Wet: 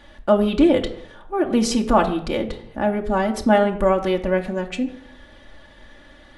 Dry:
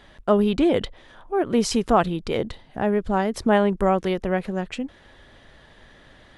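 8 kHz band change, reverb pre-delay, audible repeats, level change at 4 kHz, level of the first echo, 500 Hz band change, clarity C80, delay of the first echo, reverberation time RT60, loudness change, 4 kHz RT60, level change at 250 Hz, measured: +2.0 dB, 3 ms, none, +2.0 dB, none, +2.5 dB, 15.0 dB, none, 0.70 s, +2.0 dB, 0.45 s, +2.5 dB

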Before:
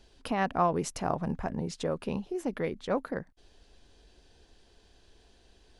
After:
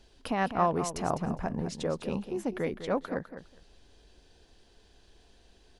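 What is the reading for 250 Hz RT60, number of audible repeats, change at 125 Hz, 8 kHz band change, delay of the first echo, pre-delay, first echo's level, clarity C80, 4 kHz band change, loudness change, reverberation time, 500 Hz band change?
none, 2, +0.5 dB, +0.5 dB, 0.204 s, none, -10.5 dB, none, +0.5 dB, +0.5 dB, none, +0.5 dB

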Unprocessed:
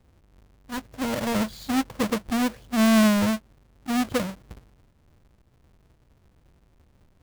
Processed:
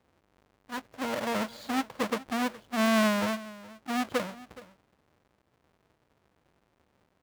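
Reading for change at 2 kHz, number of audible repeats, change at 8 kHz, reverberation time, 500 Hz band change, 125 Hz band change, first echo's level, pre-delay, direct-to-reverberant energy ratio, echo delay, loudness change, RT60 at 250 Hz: -2.0 dB, 1, -6.5 dB, none, -3.0 dB, -9.0 dB, -19.0 dB, none, none, 0.42 s, -5.5 dB, none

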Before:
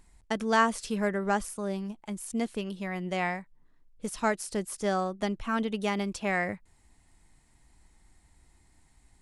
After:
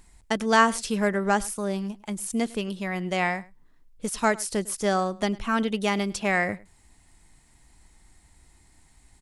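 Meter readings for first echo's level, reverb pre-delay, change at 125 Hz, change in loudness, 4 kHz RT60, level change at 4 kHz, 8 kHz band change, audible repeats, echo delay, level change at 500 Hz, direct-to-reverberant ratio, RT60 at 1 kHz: -22.0 dB, none, +4.0 dB, +4.5 dB, none, +6.5 dB, +7.5 dB, 1, 0.103 s, +4.0 dB, none, none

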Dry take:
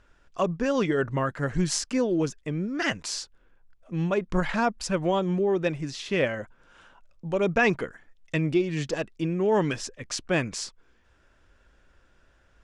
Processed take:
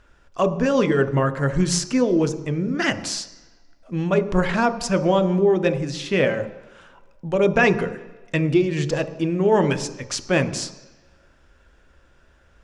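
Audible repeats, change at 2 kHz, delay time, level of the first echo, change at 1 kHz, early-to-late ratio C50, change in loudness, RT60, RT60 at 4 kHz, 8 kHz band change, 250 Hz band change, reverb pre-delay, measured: none, +4.5 dB, none, none, +5.0 dB, 12.5 dB, +6.0 dB, 1.1 s, 1.3 s, +4.5 dB, +6.0 dB, 10 ms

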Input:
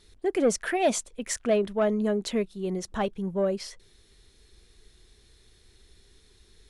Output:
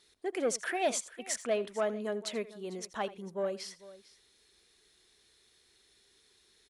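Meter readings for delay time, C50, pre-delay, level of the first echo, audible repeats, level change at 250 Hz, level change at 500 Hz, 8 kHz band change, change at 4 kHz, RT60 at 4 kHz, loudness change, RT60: 82 ms, none, none, -18.0 dB, 2, -12.0 dB, -7.0 dB, -3.5 dB, -3.5 dB, none, -7.0 dB, none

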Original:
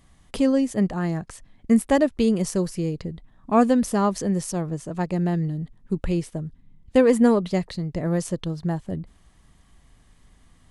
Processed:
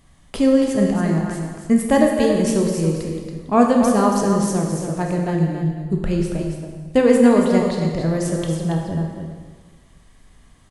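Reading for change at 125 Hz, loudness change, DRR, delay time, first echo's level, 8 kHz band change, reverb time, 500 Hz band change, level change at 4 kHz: +5.0 dB, +4.5 dB, 0.0 dB, 0.279 s, -7.0 dB, +5.0 dB, 1.5 s, +5.0 dB, +5.0 dB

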